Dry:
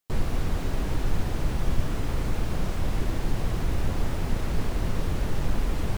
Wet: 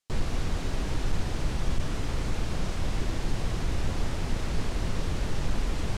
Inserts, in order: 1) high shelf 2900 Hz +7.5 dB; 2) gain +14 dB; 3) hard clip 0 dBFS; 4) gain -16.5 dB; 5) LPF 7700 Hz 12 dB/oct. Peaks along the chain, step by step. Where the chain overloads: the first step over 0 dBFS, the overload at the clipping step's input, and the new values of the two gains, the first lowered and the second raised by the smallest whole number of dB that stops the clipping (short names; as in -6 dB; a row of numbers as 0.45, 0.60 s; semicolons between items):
-9.0, +5.0, 0.0, -16.5, -16.5 dBFS; step 2, 5.0 dB; step 2 +9 dB, step 4 -11.5 dB